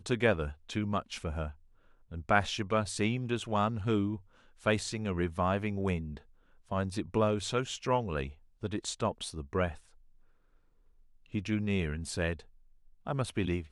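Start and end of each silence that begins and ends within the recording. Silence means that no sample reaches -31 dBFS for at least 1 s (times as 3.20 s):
9.69–11.34 s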